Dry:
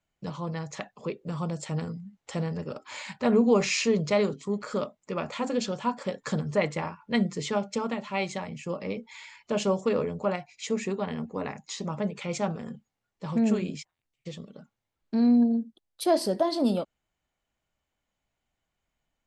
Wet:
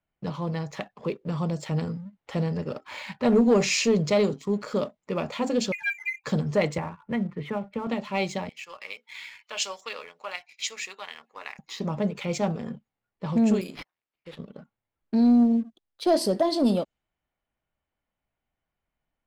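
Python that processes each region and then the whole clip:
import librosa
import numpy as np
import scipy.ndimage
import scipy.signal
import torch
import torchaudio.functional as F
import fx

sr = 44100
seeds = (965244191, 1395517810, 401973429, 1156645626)

y = fx.chain(x, sr, fx.spec_expand(power=3.8),
    fx.freq_invert(carrier_hz=2600),
    fx.doppler_dist(depth_ms=0.89), at=(5.72, 6.24))
y = fx.chain(y, sr, fx.gaussian_blur(sigma=3.8),
    fx.peak_eq(hz=390.0, db=-8.0, octaves=2.4),
    fx.band_squash(depth_pct=70), at=(6.78, 7.87))
y = fx.chain(y, sr, fx.highpass(hz=1400.0, slope=12),
    fx.high_shelf(hz=2200.0, db=7.5), at=(8.49, 11.59))
y = fx.chain(y, sr, fx.highpass(hz=700.0, slope=6),
    fx.resample_bad(factor=6, down='none', up='hold'), at=(13.61, 14.39))
y = fx.env_lowpass(y, sr, base_hz=2600.0, full_db=-22.5)
y = fx.dynamic_eq(y, sr, hz=1400.0, q=1.2, threshold_db=-44.0, ratio=4.0, max_db=-5)
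y = fx.leveller(y, sr, passes=1)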